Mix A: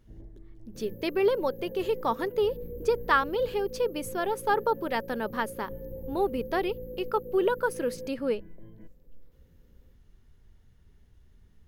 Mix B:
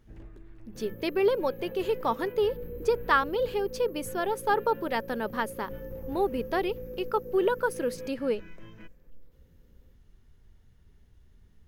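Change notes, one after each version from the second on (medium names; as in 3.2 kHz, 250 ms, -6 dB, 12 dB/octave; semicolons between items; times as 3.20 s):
first sound: remove boxcar filter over 34 samples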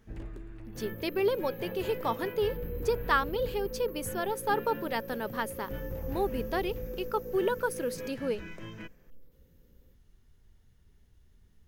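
speech -3.5 dB; first sound +6.0 dB; master: add treble shelf 4.1 kHz +6 dB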